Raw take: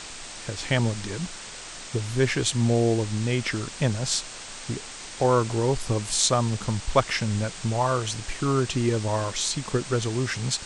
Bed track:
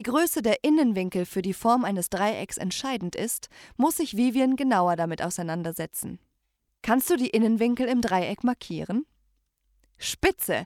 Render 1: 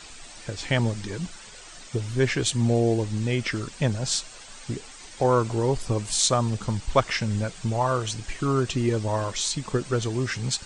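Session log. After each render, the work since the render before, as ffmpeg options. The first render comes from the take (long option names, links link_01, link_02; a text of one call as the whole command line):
ffmpeg -i in.wav -af "afftdn=noise_reduction=10:noise_floor=-40" out.wav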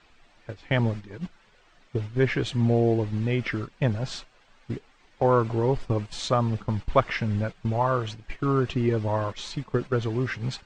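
ffmpeg -i in.wav -af "agate=range=-11dB:threshold=-30dB:ratio=16:detection=peak,lowpass=2700" out.wav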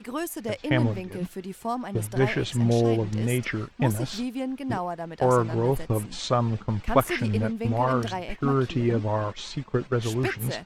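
ffmpeg -i in.wav -i bed.wav -filter_complex "[1:a]volume=-8dB[link_01];[0:a][link_01]amix=inputs=2:normalize=0" out.wav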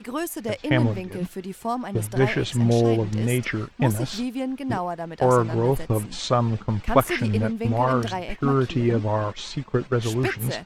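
ffmpeg -i in.wav -af "volume=2.5dB" out.wav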